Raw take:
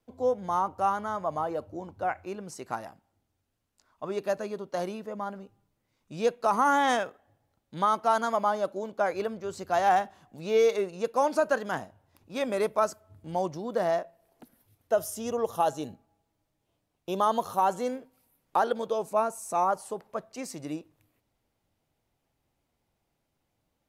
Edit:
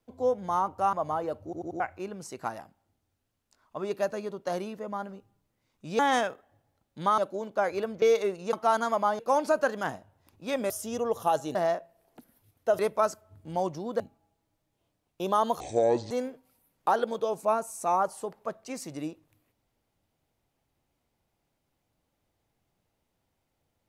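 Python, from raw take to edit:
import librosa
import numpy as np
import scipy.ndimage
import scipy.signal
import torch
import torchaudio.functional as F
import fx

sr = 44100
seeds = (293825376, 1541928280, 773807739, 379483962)

y = fx.edit(x, sr, fx.cut(start_s=0.93, length_s=0.27),
    fx.stutter_over(start_s=1.71, slice_s=0.09, count=4),
    fx.cut(start_s=6.26, length_s=0.49),
    fx.move(start_s=7.94, length_s=0.66, to_s=11.07),
    fx.cut(start_s=9.44, length_s=1.12),
    fx.swap(start_s=12.58, length_s=1.21, other_s=15.03, other_length_s=0.85),
    fx.speed_span(start_s=17.48, length_s=0.31, speed=0.61), tone=tone)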